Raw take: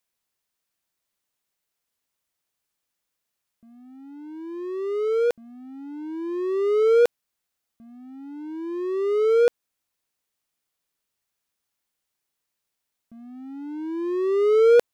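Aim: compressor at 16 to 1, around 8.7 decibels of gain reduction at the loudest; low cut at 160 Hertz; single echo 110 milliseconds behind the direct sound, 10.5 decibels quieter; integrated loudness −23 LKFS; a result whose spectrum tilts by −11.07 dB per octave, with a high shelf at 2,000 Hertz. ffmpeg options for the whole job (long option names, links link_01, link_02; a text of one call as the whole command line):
ffmpeg -i in.wav -af "highpass=160,highshelf=frequency=2000:gain=-6.5,acompressor=threshold=-22dB:ratio=16,aecho=1:1:110:0.299,volume=5dB" out.wav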